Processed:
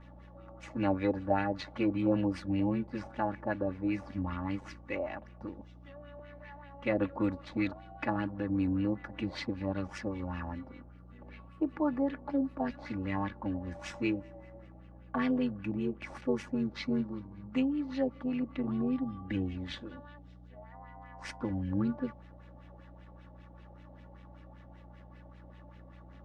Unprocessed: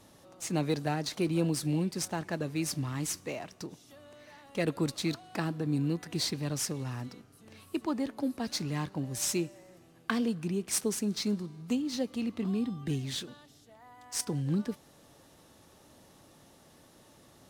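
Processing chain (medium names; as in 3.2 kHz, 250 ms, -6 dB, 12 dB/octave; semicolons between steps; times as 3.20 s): LFO low-pass sine 7.7 Hz 700–2500 Hz; granular stretch 1.5×, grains 21 ms; mains buzz 60 Hz, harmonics 3, -53 dBFS -4 dB/octave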